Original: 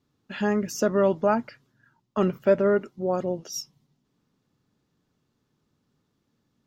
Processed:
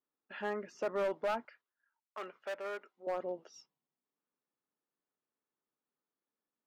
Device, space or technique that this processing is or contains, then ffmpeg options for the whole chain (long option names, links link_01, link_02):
walkie-talkie: -filter_complex "[0:a]highpass=460,lowpass=2300,asoftclip=type=hard:threshold=-22dB,agate=range=-8dB:threshold=-54dB:ratio=16:detection=peak,asettb=1/sr,asplit=3[link_01][link_02][link_03];[link_01]atrim=end=1.454[link_04];[link_02]atrim=start=1.45:end=3.07,asetpts=PTS-STARTPTS,afade=type=in:duration=0.004:curve=qsin,afade=type=out:start_time=1.616:duration=0.004:curve=qsin,highpass=frequency=1200:poles=1[link_05];[link_03]atrim=start=3.066[link_06];[link_04][link_05]acrossfade=duration=0.004:curve1=hsin:curve2=qsin[link_07];[link_07][link_06]acrossfade=duration=0.004:curve1=qsin:curve2=hsin,volume=-7dB"